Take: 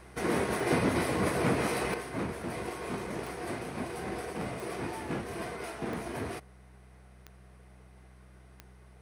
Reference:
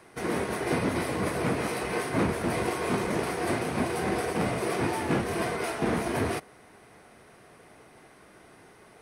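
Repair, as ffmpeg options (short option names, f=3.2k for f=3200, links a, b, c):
-af "adeclick=t=4,bandreject=f=63.3:t=h:w=4,bandreject=f=126.6:t=h:w=4,bandreject=f=189.9:t=h:w=4,asetnsamples=n=441:p=0,asendcmd='1.94 volume volume 8.5dB',volume=0dB"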